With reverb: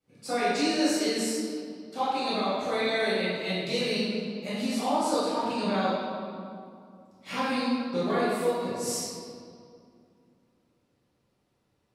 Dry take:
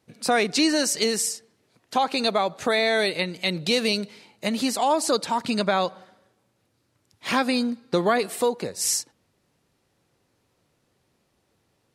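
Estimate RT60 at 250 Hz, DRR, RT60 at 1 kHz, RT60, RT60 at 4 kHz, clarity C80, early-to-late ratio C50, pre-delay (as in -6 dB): 3.3 s, -12.0 dB, 2.3 s, 2.4 s, 1.6 s, -1.0 dB, -3.5 dB, 5 ms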